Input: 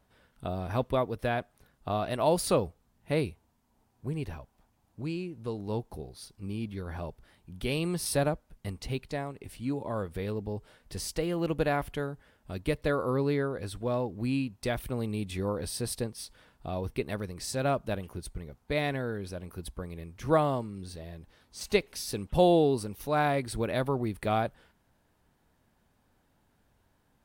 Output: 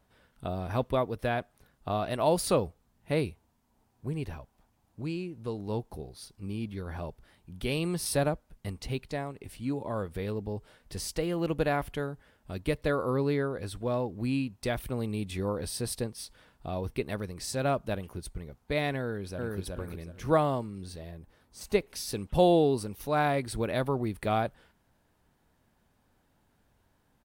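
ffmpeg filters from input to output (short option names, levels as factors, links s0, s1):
-filter_complex "[0:a]asplit=2[s0][s1];[s1]afade=t=in:st=19.01:d=0.01,afade=t=out:st=19.58:d=0.01,aecho=0:1:370|740|1110|1480:0.891251|0.222813|0.0557032|0.0139258[s2];[s0][s2]amix=inputs=2:normalize=0,asettb=1/sr,asplit=3[s3][s4][s5];[s3]atrim=end=21.114[s6];[s4]atrim=start=21.11:end=21.9,asetpts=PTS-STARTPTS,afade=t=in:d=0.004:c=qsin,afade=t=out:st=0.786:d=0.004:c=qsin,equalizer=f=3900:w=0.61:g=-7[s7];[s5]atrim=start=21.896[s8];[s6][s7]acrossfade=d=0.004:c1=hsin:c2=qsin[s9];[s9][s8]acrossfade=d=0.004:c1=qsin:c2=hsin"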